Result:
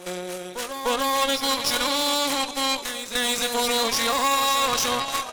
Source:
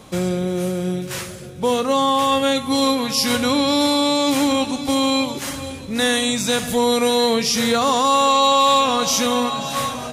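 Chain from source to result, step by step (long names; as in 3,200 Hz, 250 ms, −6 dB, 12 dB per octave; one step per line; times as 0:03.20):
high-pass filter 600 Hz 12 dB per octave
brickwall limiter −11 dBFS, peak gain reduction 5.5 dB
harmonic generator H 3 −30 dB, 6 −10 dB, 7 −38 dB, 8 −17 dB, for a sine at −11 dBFS
tempo change 1.9×
backwards echo 299 ms −9.5 dB
level −1.5 dB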